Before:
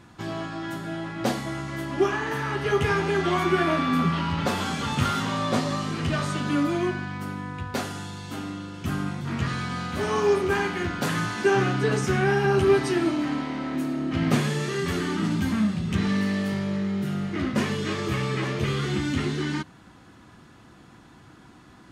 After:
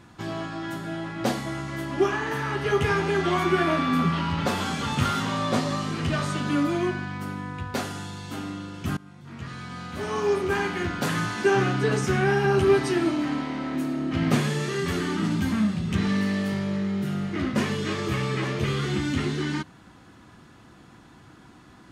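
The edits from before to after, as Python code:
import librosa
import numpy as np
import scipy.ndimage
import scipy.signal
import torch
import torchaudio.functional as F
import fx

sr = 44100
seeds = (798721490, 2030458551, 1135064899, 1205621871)

y = fx.edit(x, sr, fx.fade_in_from(start_s=8.97, length_s=1.81, floor_db=-22.0), tone=tone)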